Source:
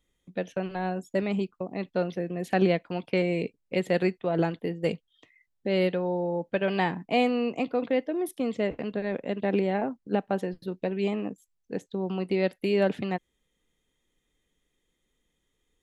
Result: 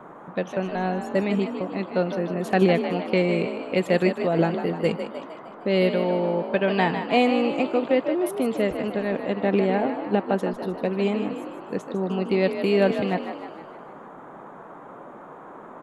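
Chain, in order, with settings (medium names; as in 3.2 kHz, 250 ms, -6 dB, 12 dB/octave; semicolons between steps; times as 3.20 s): band noise 150–1200 Hz -47 dBFS; frequency-shifting echo 153 ms, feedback 55%, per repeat +45 Hz, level -9 dB; trim +4 dB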